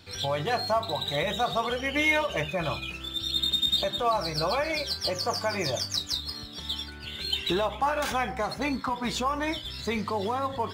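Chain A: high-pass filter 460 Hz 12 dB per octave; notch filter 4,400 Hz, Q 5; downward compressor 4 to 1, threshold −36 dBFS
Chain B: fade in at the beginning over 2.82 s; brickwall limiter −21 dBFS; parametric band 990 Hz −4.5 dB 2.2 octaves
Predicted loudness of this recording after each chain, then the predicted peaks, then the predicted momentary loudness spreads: −37.5, −32.0 LKFS; −24.0, −21.0 dBFS; 4, 8 LU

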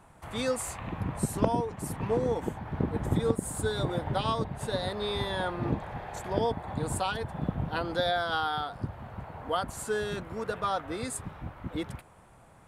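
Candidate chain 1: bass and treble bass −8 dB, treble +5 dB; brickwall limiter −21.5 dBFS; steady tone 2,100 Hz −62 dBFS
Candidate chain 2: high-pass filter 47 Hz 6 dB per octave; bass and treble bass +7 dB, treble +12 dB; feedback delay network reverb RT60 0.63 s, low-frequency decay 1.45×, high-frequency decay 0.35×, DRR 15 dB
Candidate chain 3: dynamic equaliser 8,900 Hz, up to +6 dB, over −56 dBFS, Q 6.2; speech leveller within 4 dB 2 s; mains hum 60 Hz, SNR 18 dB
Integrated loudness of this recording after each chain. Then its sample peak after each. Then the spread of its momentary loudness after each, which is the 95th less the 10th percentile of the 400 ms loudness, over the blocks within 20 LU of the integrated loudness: −34.0, −28.0, −31.5 LKFS; −21.5, −8.5, −11.5 dBFS; 8, 9, 9 LU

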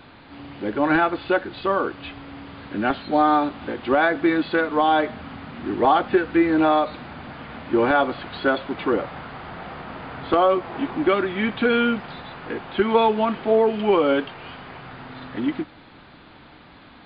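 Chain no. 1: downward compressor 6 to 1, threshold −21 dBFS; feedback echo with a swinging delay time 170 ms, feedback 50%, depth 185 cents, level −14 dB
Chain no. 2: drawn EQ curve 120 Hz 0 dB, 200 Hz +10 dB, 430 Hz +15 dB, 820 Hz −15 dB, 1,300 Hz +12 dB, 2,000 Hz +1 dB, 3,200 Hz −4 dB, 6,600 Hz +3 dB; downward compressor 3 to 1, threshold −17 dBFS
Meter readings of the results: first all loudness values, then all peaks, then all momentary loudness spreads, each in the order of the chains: −27.5, −20.5 LKFS; −10.5, −5.0 dBFS; 14, 14 LU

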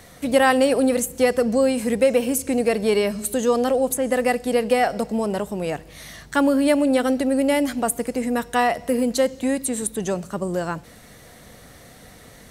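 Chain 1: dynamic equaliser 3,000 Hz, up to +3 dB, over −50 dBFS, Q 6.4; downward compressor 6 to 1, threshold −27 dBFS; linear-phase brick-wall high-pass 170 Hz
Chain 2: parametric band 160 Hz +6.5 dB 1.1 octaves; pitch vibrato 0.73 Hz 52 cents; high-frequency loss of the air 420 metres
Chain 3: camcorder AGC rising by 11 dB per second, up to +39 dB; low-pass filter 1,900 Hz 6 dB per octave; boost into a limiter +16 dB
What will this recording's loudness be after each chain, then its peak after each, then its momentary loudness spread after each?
−31.0, −21.0, −10.0 LKFS; −15.5, −5.5, −1.0 dBFS; 16, 7, 7 LU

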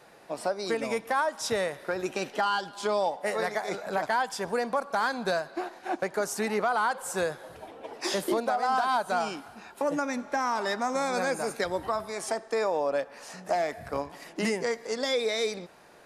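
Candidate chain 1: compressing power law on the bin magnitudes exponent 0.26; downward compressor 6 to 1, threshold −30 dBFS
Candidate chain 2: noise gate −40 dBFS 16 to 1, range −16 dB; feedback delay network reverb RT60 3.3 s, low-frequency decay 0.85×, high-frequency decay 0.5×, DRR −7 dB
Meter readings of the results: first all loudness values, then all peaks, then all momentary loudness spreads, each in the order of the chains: −33.5, −21.0 LKFS; −12.0, −6.5 dBFS; 5, 6 LU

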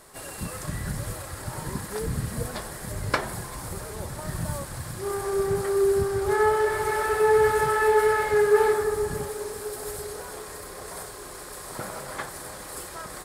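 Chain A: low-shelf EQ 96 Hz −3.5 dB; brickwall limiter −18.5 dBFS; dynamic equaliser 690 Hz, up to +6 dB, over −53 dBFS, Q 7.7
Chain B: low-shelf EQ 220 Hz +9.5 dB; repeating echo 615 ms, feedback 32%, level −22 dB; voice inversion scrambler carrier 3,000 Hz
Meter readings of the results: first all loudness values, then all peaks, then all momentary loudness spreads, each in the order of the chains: −30.0, −19.5 LKFS; −17.5, −6.5 dBFS; 12, 19 LU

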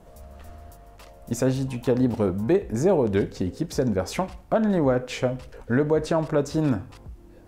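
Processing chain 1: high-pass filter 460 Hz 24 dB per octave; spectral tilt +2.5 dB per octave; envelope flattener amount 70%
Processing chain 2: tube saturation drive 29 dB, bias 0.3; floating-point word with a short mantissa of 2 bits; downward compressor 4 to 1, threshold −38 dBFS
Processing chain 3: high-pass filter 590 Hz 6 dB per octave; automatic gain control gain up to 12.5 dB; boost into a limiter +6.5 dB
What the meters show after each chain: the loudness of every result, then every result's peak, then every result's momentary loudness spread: −24.5, −40.5, −14.0 LKFS; −8.5, −27.5, −1.0 dBFS; 6, 9, 8 LU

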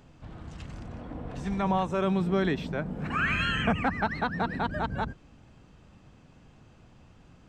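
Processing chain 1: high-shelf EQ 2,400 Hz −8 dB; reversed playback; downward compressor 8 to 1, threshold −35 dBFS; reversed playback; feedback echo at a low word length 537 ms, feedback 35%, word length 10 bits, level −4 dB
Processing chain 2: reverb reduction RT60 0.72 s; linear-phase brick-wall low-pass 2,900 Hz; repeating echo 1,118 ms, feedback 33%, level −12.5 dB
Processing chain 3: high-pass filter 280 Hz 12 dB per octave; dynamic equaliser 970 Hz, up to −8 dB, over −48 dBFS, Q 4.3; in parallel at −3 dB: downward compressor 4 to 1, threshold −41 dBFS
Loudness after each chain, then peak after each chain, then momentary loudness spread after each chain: −39.0, −30.5, −30.0 LKFS; −23.5, −14.5, −15.0 dBFS; 19, 17, 18 LU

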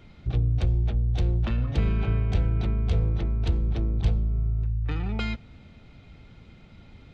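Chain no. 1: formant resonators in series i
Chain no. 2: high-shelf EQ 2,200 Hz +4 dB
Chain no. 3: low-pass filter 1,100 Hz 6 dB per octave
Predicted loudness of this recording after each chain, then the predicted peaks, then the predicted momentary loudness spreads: −38.5, −26.5, −26.5 LKFS; −24.0, −12.0, −12.5 dBFS; 4, 4, 5 LU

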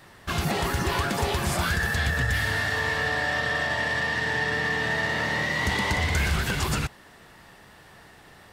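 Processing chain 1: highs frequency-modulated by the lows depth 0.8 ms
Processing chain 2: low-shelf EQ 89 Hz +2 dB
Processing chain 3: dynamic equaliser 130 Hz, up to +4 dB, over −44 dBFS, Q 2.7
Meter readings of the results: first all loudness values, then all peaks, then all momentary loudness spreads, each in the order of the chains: −25.5, −25.0, −25.0 LKFS; −16.0, −15.0, −14.5 dBFS; 2, 2, 2 LU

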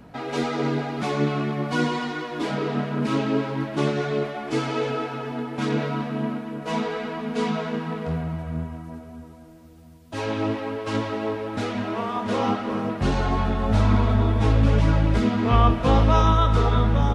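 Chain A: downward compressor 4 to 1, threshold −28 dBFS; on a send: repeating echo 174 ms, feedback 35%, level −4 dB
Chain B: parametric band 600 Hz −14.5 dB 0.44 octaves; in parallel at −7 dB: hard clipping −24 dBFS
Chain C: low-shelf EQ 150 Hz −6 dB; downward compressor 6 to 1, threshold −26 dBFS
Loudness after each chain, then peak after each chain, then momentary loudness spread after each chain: −30.0, −23.0, −31.0 LKFS; −16.0, −6.0, −16.5 dBFS; 3, 9, 3 LU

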